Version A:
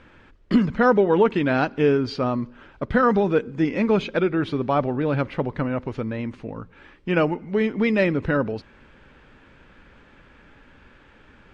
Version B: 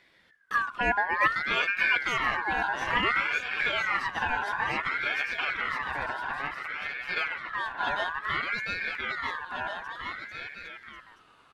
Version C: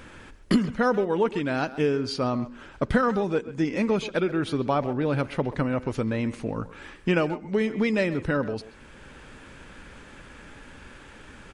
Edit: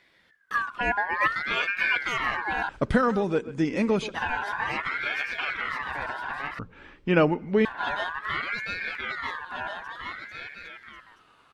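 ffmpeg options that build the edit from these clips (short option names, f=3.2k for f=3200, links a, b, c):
-filter_complex "[1:a]asplit=3[a][b][c];[a]atrim=end=2.692[d];[2:a]atrim=start=2.688:end=4.152[e];[b]atrim=start=4.148:end=6.592[f];[0:a]atrim=start=6.588:end=7.652[g];[c]atrim=start=7.648[h];[d][e]acrossfade=d=0.004:c1=hsin:c2=hsin[i];[i][f]acrossfade=d=0.004:c1=hsin:c2=hsin[j];[j][g]acrossfade=d=0.004:c1=hsin:c2=hsin[k];[k][h]acrossfade=d=0.004:c1=hsin:c2=hsin"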